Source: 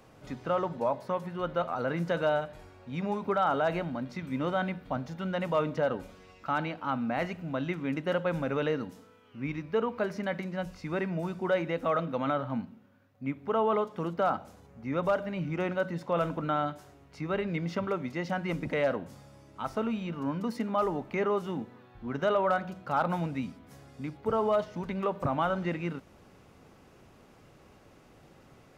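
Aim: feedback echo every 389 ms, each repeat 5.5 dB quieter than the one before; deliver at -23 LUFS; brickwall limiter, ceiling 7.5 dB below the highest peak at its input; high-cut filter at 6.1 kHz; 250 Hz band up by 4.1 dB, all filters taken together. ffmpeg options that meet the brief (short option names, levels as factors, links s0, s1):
-af "lowpass=6100,equalizer=f=250:t=o:g=5.5,alimiter=limit=0.0708:level=0:latency=1,aecho=1:1:389|778|1167|1556|1945|2334|2723:0.531|0.281|0.149|0.079|0.0419|0.0222|0.0118,volume=2.82"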